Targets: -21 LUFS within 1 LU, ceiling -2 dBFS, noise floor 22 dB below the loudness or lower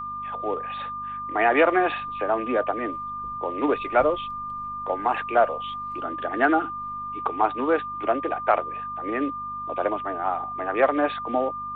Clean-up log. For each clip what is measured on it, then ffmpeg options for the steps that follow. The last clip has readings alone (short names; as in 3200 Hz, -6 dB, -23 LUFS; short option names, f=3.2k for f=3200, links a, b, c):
hum 50 Hz; harmonics up to 250 Hz; hum level -46 dBFS; steady tone 1200 Hz; tone level -30 dBFS; loudness -25.5 LUFS; peak -6.5 dBFS; loudness target -21.0 LUFS
-> -af "bandreject=f=50:t=h:w=4,bandreject=f=100:t=h:w=4,bandreject=f=150:t=h:w=4,bandreject=f=200:t=h:w=4,bandreject=f=250:t=h:w=4"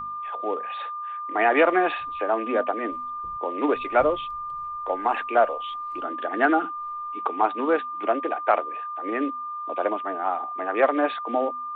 hum none; steady tone 1200 Hz; tone level -30 dBFS
-> -af "bandreject=f=1.2k:w=30"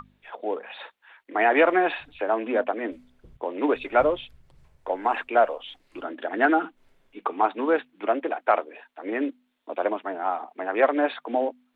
steady tone none; loudness -25.5 LUFS; peak -7.0 dBFS; loudness target -21.0 LUFS
-> -af "volume=4.5dB"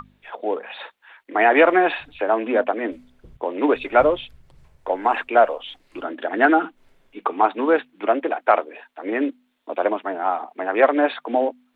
loudness -21.0 LUFS; peak -2.5 dBFS; noise floor -65 dBFS